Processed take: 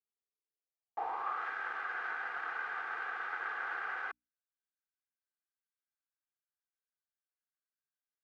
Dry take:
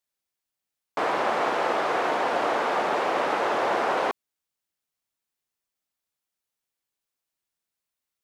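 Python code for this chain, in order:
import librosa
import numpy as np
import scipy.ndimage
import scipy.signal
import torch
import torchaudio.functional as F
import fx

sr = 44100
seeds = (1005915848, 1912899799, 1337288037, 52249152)

y = fx.lower_of_two(x, sr, delay_ms=2.5)
y = fx.hum_notches(y, sr, base_hz=60, count=5)
y = fx.filter_sweep_bandpass(y, sr, from_hz=430.0, to_hz=1500.0, start_s=0.5, end_s=1.48, q=5.3)
y = F.gain(torch.from_numpy(y), -2.5).numpy()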